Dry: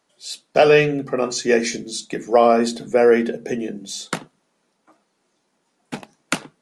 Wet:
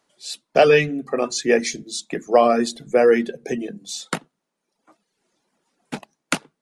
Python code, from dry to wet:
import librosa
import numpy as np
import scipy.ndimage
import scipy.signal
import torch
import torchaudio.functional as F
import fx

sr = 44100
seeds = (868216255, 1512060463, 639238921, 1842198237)

y = fx.dereverb_blind(x, sr, rt60_s=0.8)